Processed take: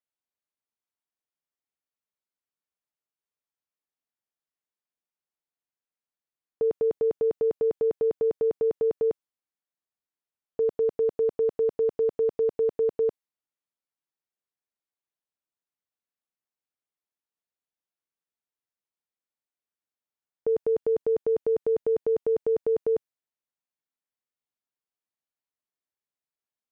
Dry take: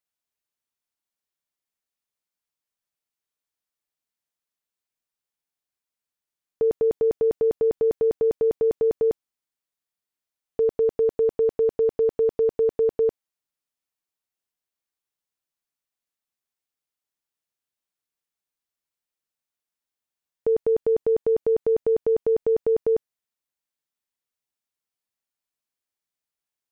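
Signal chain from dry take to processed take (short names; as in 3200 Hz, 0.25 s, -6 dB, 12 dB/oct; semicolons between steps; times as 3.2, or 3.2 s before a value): low shelf 75 Hz -10 dB; mismatched tape noise reduction decoder only; gain -3 dB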